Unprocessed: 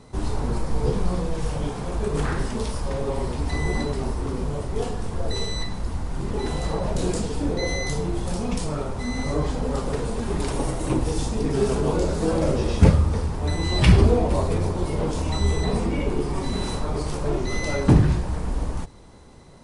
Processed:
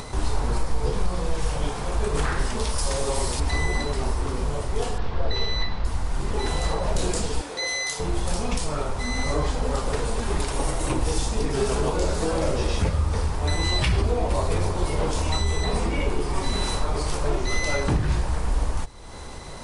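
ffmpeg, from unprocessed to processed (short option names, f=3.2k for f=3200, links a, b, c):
-filter_complex "[0:a]asettb=1/sr,asplit=3[a][b][c];[a]atrim=end=2.784[d];[b]atrim=start=2.78:end=3.4,asetpts=PTS-STARTPTS,afade=t=in:d=0.004:c=qsin,afade=t=out:st=0.616:d=0.004:c=qsin,bass=f=250:g=-1,treble=f=4k:g=12[e];[c]atrim=start=3.396[f];[d][e]acrossfade=d=0.004:c1=hsin:c2=qsin[g];[g][f]acrossfade=d=0.004:c1=qsin:c2=hsin,asettb=1/sr,asplit=3[h][i][j];[h]atrim=end=4.984[k];[i]atrim=start=4.98:end=5.85,asetpts=PTS-STARTPTS,afade=t=in:d=0.004:c=qsin,afade=t=out:st=0.866:d=0.004:c=qsin,lowpass=f=4.4k:w=0.5412,lowpass=f=4.4k:w=1.3066[l];[j]atrim=start=5.846[m];[k][l]acrossfade=d=0.004:c1=hsin:c2=qsin[n];[n][m]acrossfade=d=0.004:c1=qsin:c2=hsin,asettb=1/sr,asplit=3[o][p][q];[o]atrim=end=7.414[r];[p]atrim=start=7.41:end=8,asetpts=PTS-STARTPTS,afade=t=in:d=0.004:c=qsin,afade=t=out:st=0.586:d=0.004:c=qsin,highpass=f=1.2k:p=1[s];[q]atrim=start=7.996[t];[r][s]acrossfade=d=0.004:c1=hsin:c2=qsin[u];[u][t]acrossfade=d=0.004:c1=qsin:c2=hsin,equalizer=f=200:w=0.47:g=-9.5,alimiter=limit=-17.5dB:level=0:latency=1:release=219,acompressor=mode=upward:threshold=-31dB:ratio=2.5,volume=5dB"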